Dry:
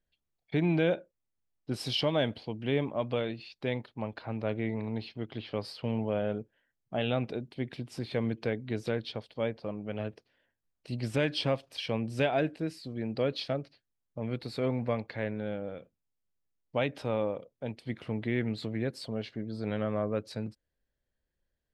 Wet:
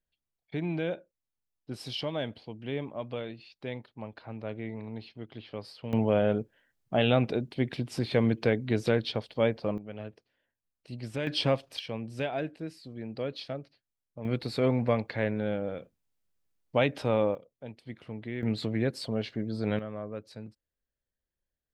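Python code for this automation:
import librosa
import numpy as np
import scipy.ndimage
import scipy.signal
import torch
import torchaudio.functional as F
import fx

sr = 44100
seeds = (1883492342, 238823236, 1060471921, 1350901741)

y = fx.gain(x, sr, db=fx.steps((0.0, -5.0), (5.93, 6.0), (9.78, -5.0), (11.27, 3.0), (11.79, -4.5), (14.25, 4.5), (17.35, -6.0), (18.43, 4.0), (19.79, -7.0)))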